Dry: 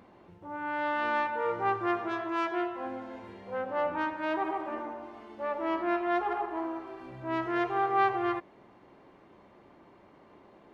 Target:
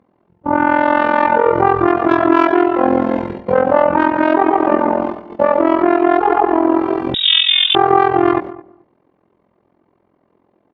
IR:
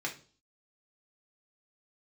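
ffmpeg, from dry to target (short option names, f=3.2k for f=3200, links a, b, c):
-filter_complex "[0:a]aemphasis=mode=reproduction:type=50kf,agate=range=-29dB:threshold=-45dB:ratio=16:detection=peak,highpass=59,tiltshelf=f=970:g=3.5,acompressor=threshold=-32dB:ratio=6,tremolo=f=43:d=0.889,asplit=2[a][b];[b]adelay=216,lowpass=f=970:p=1,volume=-17.5dB,asplit=2[c][d];[d]adelay=216,lowpass=f=970:p=1,volume=0.17[e];[a][c][e]amix=inputs=3:normalize=0,asettb=1/sr,asplit=3[f][g][h];[f]atrim=end=7.144[i];[g]atrim=start=7.14:end=7.75,asetpts=PTS-STARTPTS,afade=t=in:d=0.004:c=qsin,afade=t=out:st=0.606:d=0.004:c=qsin,lowpass=f=3.3k:t=q:w=0.5098,lowpass=f=3.3k:t=q:w=0.6013,lowpass=f=3.3k:t=q:w=0.9,lowpass=f=3.3k:t=q:w=2.563,afreqshift=-3900[j];[h]atrim=start=7.746[k];[i][j]acrossfade=d=0.004:c1=hsin:c2=qsin[l];[l][k]acrossfade=d=0.004:c1=qsin:c2=hsin,alimiter=level_in=28.5dB:limit=-1dB:release=50:level=0:latency=1,volume=-1dB"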